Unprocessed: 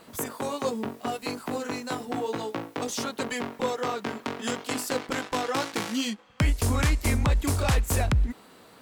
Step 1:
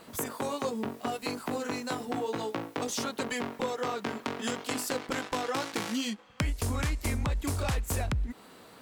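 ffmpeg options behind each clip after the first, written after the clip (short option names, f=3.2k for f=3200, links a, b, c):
-af "acompressor=threshold=-29dB:ratio=3"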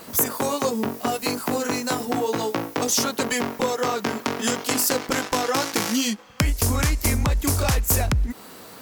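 -af "aexciter=amount=1.9:drive=5.5:freq=5k,volume=8.5dB"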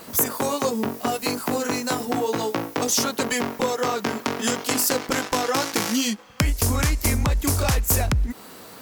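-af "acrusher=bits=10:mix=0:aa=0.000001"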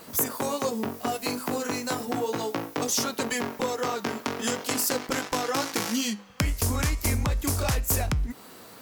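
-af "flanger=delay=6.4:depth=5.8:regen=87:speed=0.37:shape=triangular"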